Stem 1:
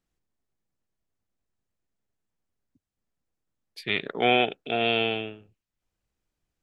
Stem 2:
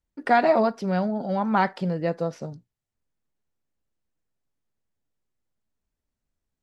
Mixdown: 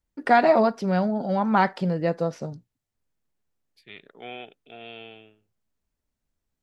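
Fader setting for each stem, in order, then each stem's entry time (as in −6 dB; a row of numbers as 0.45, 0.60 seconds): −17.5, +1.5 decibels; 0.00, 0.00 seconds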